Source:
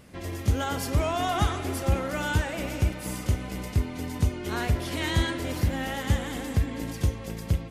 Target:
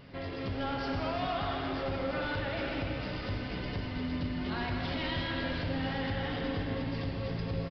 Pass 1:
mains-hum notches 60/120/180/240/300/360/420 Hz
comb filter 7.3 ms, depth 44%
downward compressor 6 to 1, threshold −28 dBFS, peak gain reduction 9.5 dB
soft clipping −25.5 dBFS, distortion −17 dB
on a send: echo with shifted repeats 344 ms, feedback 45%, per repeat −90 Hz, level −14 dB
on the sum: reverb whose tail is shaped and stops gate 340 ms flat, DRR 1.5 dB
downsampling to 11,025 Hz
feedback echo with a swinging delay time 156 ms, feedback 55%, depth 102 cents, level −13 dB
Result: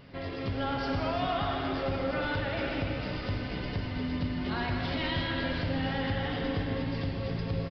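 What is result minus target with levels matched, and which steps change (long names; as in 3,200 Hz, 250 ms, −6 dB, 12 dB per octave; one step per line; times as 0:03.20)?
soft clipping: distortion −6 dB
change: soft clipping −32 dBFS, distortion −10 dB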